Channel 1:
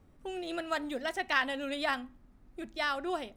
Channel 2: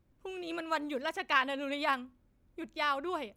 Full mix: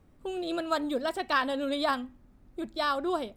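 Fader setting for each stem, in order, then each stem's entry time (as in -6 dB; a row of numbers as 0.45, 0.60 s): 0.0, +1.0 dB; 0.00, 0.00 s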